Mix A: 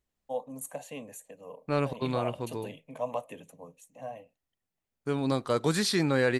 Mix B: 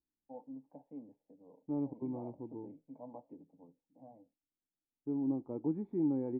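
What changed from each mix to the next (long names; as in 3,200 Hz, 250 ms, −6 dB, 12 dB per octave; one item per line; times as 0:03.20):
second voice: add low-pass filter 2,100 Hz 6 dB per octave
master: add formant resonators in series u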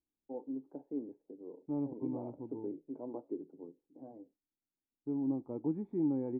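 first voice: remove phaser with its sweep stopped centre 1,400 Hz, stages 6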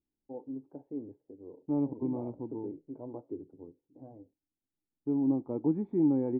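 first voice: remove high-pass filter 170 Hz 24 dB per octave
second voice +6.0 dB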